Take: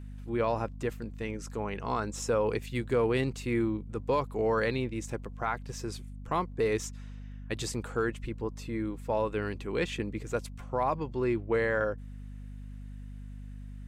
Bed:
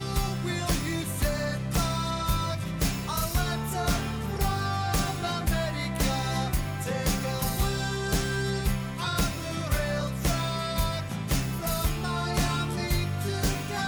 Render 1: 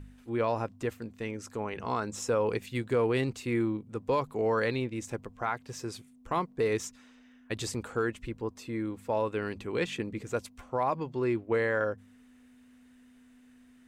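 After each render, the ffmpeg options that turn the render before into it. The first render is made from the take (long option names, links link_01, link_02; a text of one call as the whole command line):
ffmpeg -i in.wav -af "bandreject=frequency=50:width_type=h:width=4,bandreject=frequency=100:width_type=h:width=4,bandreject=frequency=150:width_type=h:width=4,bandreject=frequency=200:width_type=h:width=4" out.wav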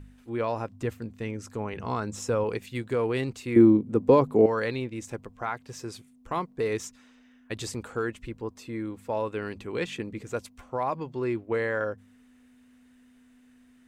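ffmpeg -i in.wav -filter_complex "[0:a]asettb=1/sr,asplit=3[link_01][link_02][link_03];[link_01]atrim=end=0.724[link_04];[link_02]atrim=start=0.72:end=2.44,asetpts=PTS-STARTPTS,afade=type=in:duration=0.004:curve=qsin,afade=type=out:start_time=1.716:duration=0.004:curve=qsin,equalizer=frequency=98:width_type=o:width=2.5:gain=6.5[link_05];[link_03]atrim=start=2.436[link_06];[link_04][link_05]acrossfade=duration=0.004:curve1=hsin:curve2=qsin[link_07];[link_07][link_06]acrossfade=duration=0.004:curve1=qsin:curve2=hsin,asettb=1/sr,asplit=3[link_08][link_09][link_10];[link_08]atrim=end=3.564[link_11];[link_09]atrim=start=3.56:end=4.46,asetpts=PTS-STARTPTS,afade=type=in:duration=0.004:curve=qsin,afade=type=out:start_time=0.896:duration=0.004:curve=qsin,equalizer=frequency=270:width=0.41:gain=14[link_12];[link_10]atrim=start=4.456[link_13];[link_11][link_12]acrossfade=duration=0.004:curve1=hsin:curve2=qsin[link_14];[link_14][link_13]acrossfade=duration=0.004:curve1=qsin:curve2=hsin" out.wav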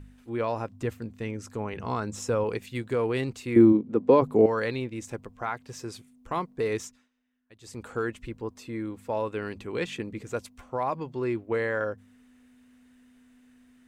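ffmpeg -i in.wav -filter_complex "[0:a]asplit=3[link_01][link_02][link_03];[link_01]afade=type=out:start_time=3.72:duration=0.02[link_04];[link_02]highpass=180,lowpass=4800,afade=type=in:start_time=3.72:duration=0.02,afade=type=out:start_time=4.21:duration=0.02[link_05];[link_03]afade=type=in:start_time=4.21:duration=0.02[link_06];[link_04][link_05][link_06]amix=inputs=3:normalize=0,asplit=3[link_07][link_08][link_09];[link_07]atrim=end=7.09,asetpts=PTS-STARTPTS,afade=type=out:start_time=6.79:duration=0.3:silence=0.0944061[link_10];[link_08]atrim=start=7.09:end=7.61,asetpts=PTS-STARTPTS,volume=-20.5dB[link_11];[link_09]atrim=start=7.61,asetpts=PTS-STARTPTS,afade=type=in:duration=0.3:silence=0.0944061[link_12];[link_10][link_11][link_12]concat=n=3:v=0:a=1" out.wav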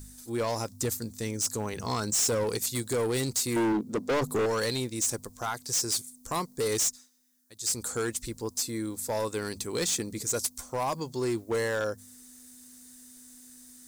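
ffmpeg -i in.wav -af "aexciter=amount=6.6:drive=9.5:freq=4200,volume=24dB,asoftclip=hard,volume=-24dB" out.wav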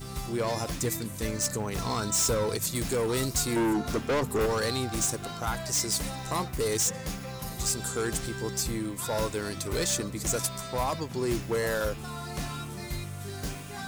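ffmpeg -i in.wav -i bed.wav -filter_complex "[1:a]volume=-8.5dB[link_01];[0:a][link_01]amix=inputs=2:normalize=0" out.wav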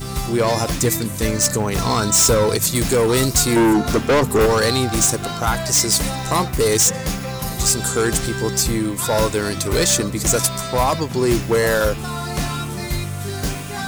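ffmpeg -i in.wav -af "volume=11.5dB" out.wav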